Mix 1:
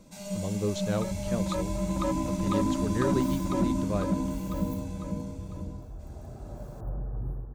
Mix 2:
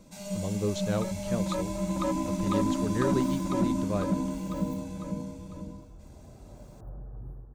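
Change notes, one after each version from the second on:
second sound -8.0 dB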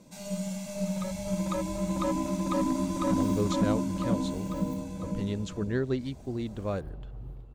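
speech: entry +2.75 s; second sound: remove brick-wall FIR band-stop 1.8–9.5 kHz

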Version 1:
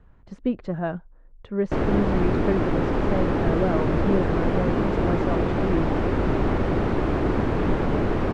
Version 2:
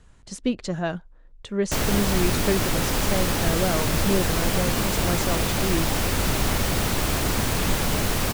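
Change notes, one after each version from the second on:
background: add peaking EQ 350 Hz -8 dB 1 oct; master: remove low-pass 1.5 kHz 12 dB/octave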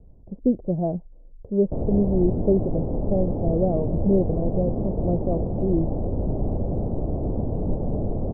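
speech +4.0 dB; master: add steep low-pass 680 Hz 36 dB/octave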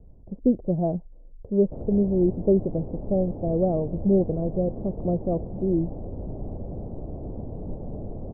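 background -9.0 dB

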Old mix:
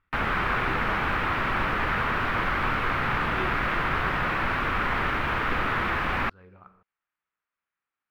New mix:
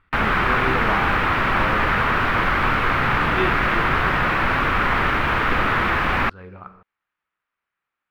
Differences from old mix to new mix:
speech +12.0 dB; background +6.5 dB

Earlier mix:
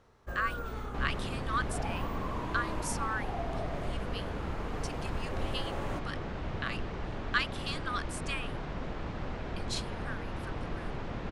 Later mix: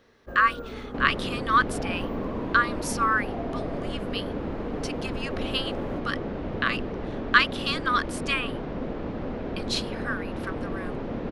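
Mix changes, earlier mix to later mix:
speech +11.0 dB; first sound -4.0 dB; master: add graphic EQ 250/500/8000 Hz +10/+8/-9 dB

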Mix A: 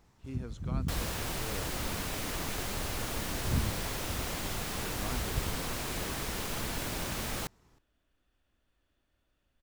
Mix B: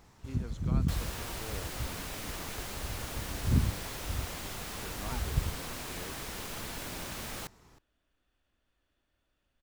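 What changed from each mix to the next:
first sound +7.5 dB; second sound -3.5 dB; master: add bass shelf 410 Hz -3 dB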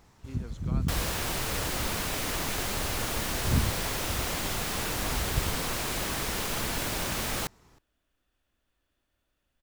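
second sound +9.0 dB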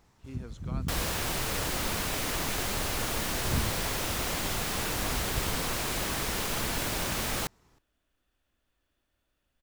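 first sound -5.0 dB

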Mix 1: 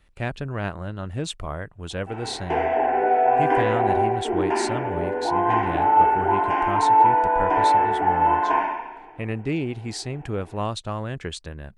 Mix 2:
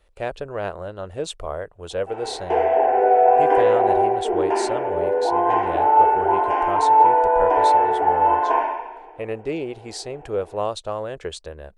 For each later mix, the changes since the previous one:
master: add graphic EQ 125/250/500/2000 Hz -10/-8/+10/-4 dB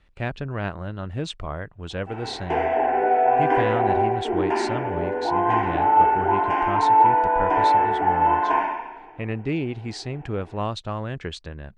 speech: add low-pass 5.2 kHz 12 dB/octave; master: add graphic EQ 125/250/500/2000 Hz +10/+8/-10/+4 dB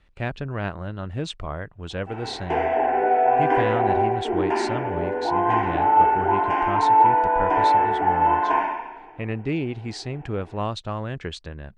no change

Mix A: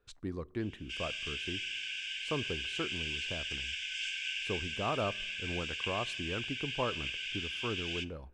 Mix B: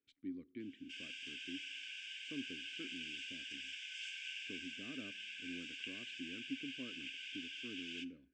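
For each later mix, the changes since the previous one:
speech: add vowel filter i; background -9.0 dB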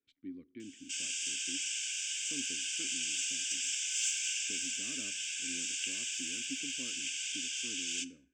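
background: remove distance through air 410 m

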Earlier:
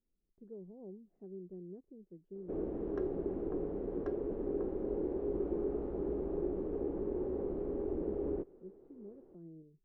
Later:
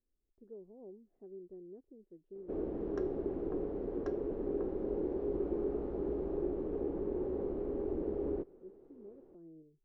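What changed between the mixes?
speech: add peaking EQ 180 Hz -11.5 dB 0.5 oct; background: remove distance through air 200 m

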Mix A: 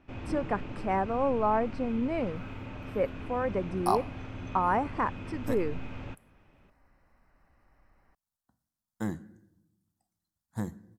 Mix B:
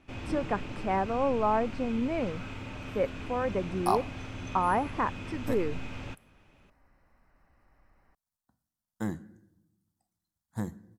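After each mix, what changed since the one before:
first sound: remove low-pass 1.8 kHz 6 dB/octave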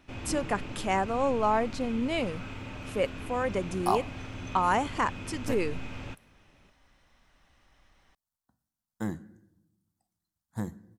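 speech: remove boxcar filter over 13 samples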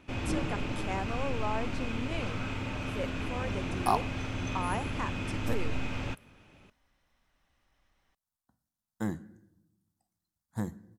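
speech -9.0 dB; first sound +5.0 dB

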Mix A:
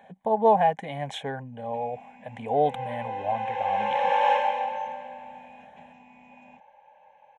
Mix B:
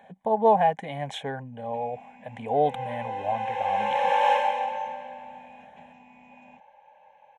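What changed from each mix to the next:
second sound: remove distance through air 79 m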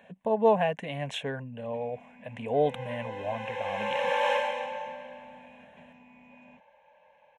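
speech: remove Butterworth band-stop 2.7 kHz, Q 7.3; first sound: add treble shelf 5.6 kHz -11 dB; master: add peaking EQ 800 Hz -14.5 dB 0.22 oct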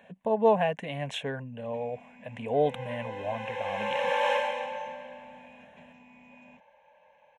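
first sound: add treble shelf 5.6 kHz +11 dB

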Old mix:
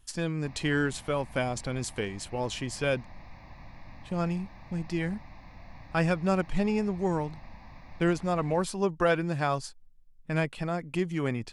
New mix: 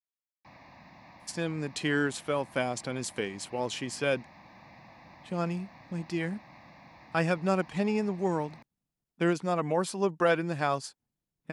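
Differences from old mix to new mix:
speech: entry +1.20 s; master: add high-pass 170 Hz 12 dB/octave

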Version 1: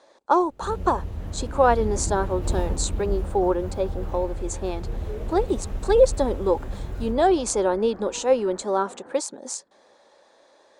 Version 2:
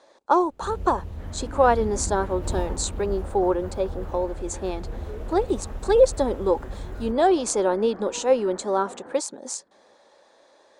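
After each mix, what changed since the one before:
first sound: send -11.5 dB; second sound +3.0 dB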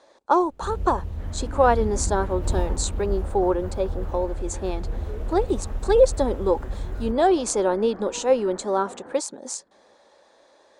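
master: add bass shelf 86 Hz +6.5 dB

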